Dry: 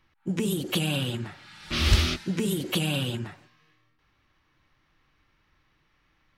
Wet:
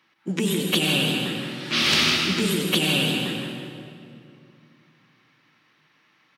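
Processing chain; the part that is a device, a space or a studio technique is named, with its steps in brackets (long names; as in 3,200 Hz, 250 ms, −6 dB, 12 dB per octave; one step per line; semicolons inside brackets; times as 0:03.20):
PA in a hall (high-pass filter 170 Hz 24 dB per octave; parametric band 3,100 Hz +4.5 dB 2.5 octaves; single-tap delay 159 ms −9 dB; convolution reverb RT60 2.4 s, pre-delay 82 ms, DRR 2.5 dB)
level +2.5 dB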